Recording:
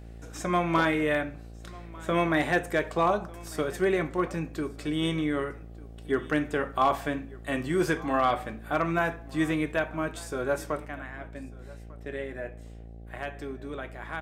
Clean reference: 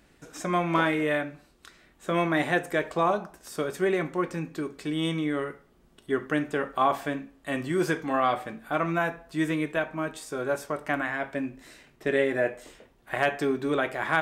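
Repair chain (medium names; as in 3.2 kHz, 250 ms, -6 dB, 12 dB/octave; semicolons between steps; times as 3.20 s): clip repair -15 dBFS; de-hum 56.7 Hz, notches 14; inverse comb 1197 ms -22 dB; trim 0 dB, from 10.86 s +11.5 dB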